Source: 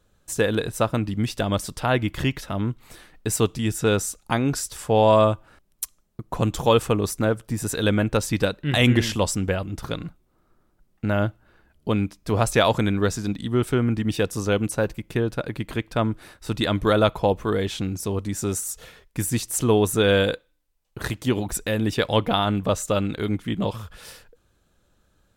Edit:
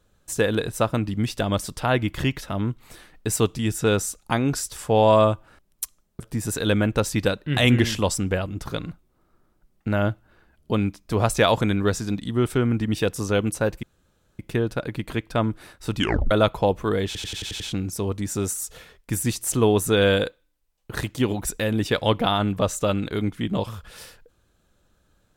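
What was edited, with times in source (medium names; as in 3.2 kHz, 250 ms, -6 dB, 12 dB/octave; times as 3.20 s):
6.20–7.37 s: delete
15.00 s: insert room tone 0.56 s
16.58 s: tape stop 0.34 s
17.67 s: stutter 0.09 s, 7 plays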